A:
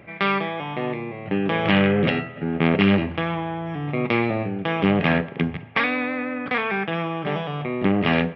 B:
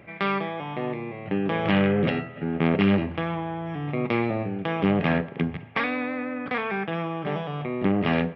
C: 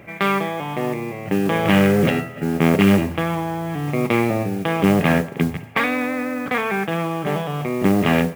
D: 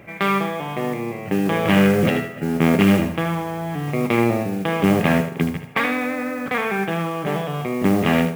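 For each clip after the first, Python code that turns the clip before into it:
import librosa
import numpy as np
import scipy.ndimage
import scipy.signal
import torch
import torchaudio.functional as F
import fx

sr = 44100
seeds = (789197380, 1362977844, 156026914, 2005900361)

y1 = fx.dynamic_eq(x, sr, hz=2900.0, q=0.71, threshold_db=-37.0, ratio=4.0, max_db=-4)
y1 = y1 * 10.0 ** (-2.5 / 20.0)
y2 = fx.mod_noise(y1, sr, seeds[0], snr_db=23)
y2 = y2 * 10.0 ** (6.0 / 20.0)
y3 = fx.echo_feedback(y2, sr, ms=77, feedback_pct=27, wet_db=-9.5)
y3 = y3 * 10.0 ** (-1.0 / 20.0)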